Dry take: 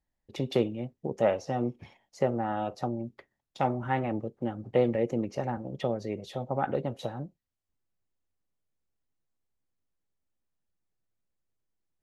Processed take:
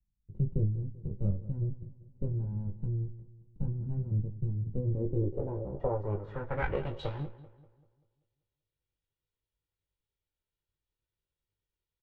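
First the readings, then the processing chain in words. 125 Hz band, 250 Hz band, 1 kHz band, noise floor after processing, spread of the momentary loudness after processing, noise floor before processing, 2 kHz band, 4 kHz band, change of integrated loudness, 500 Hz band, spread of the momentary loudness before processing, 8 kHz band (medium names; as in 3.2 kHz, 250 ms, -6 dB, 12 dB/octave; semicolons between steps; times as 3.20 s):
+5.5 dB, -6.5 dB, -12.0 dB, under -85 dBFS, 8 LU, -84 dBFS, -4.5 dB, -10.5 dB, -3.5 dB, -8.5 dB, 10 LU, no reading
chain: comb filter that takes the minimum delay 2.1 ms; bass shelf 210 Hz +10.5 dB; doubling 20 ms -5.5 dB; filtered feedback delay 194 ms, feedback 45%, low-pass 2.6 kHz, level -16 dB; low-pass sweep 190 Hz -> 3.5 kHz, 4.82–6.97 s; trim -5.5 dB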